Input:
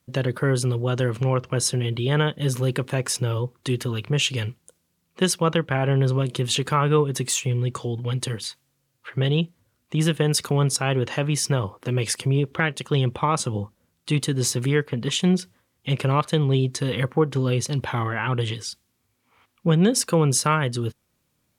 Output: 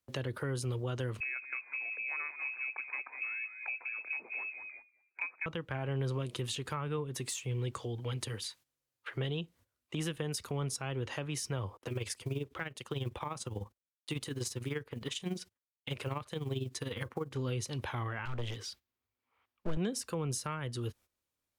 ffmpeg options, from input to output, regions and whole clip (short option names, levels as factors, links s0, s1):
-filter_complex "[0:a]asettb=1/sr,asplit=3[s0][s1][s2];[s0]atrim=end=1.204[s3];[s1]atrim=start=1.2:end=5.46,asetpts=PTS-STARTPTS,afade=t=in:d=0.004:c=qsin,afade=t=out:st=4.256:d=0.004:c=qsin,lowpass=f=2300:t=q:w=0.5098,lowpass=f=2300:t=q:w=0.6013,lowpass=f=2300:t=q:w=0.9,lowpass=f=2300:t=q:w=2.563,afreqshift=-2700,highpass=f=280:w=0.5412,highpass=f=280:w=1.3066,asplit=4[s4][s5][s6][s7];[s5]adelay=194,afreqshift=-65,volume=0.2[s8];[s6]adelay=388,afreqshift=-130,volume=0.0676[s9];[s7]adelay=582,afreqshift=-195,volume=0.0232[s10];[s4][s8][s9][s10]amix=inputs=4:normalize=0,atrim=end_sample=187866[s11];[s2]atrim=start=5.456[s12];[s3][s11]acrossfade=d=0.004:c1=hsin:c2=qsin[s13];[s13][s12]acrossfade=d=0.004:c1=qsin:c2=hsin,asettb=1/sr,asplit=3[s14][s15][s16];[s14]atrim=end=11.774[s17];[s15]atrim=start=11.77:end=17.34,asetpts=PTS-STARTPTS,afade=t=in:d=0.004:c=qsin,afade=t=out:st=5.566:d=0.004:c=qsin,agate=range=0.0794:threshold=0.00316:ratio=16:release=100:detection=peak,acrusher=bits=9:mode=log:mix=0:aa=0.000001,tremolo=f=20:d=0.7[s18];[s16]atrim=start=17.336[s19];[s17][s18]acrossfade=d=0.004:c1=hsin:c2=qsin[s20];[s20][s19]acrossfade=d=0.004:c1=qsin:c2=hsin,asettb=1/sr,asplit=3[s21][s22][s23];[s21]atrim=end=18.254[s24];[s22]atrim=start=18.25:end=19.77,asetpts=PTS-STARTPTS,afade=t=in:d=0.004:c=qsin,afade=t=out:st=1.516:d=0.004:c=qsin,equalizer=f=8600:w=0.74:g=-12,aeval=exprs='clip(val(0),-1,0.0282)':c=same[s25];[s23]atrim=start=19.766[s26];[s24][s25]acrossfade=d=0.004:c1=hsin:c2=qsin[s27];[s27][s26]acrossfade=d=0.004:c1=qsin:c2=hsin,agate=range=0.224:threshold=0.00447:ratio=16:detection=peak,equalizer=f=160:w=1.1:g=-13,acrossover=split=200[s28][s29];[s29]acompressor=threshold=0.0141:ratio=4[s30];[s28][s30]amix=inputs=2:normalize=0,volume=0.794"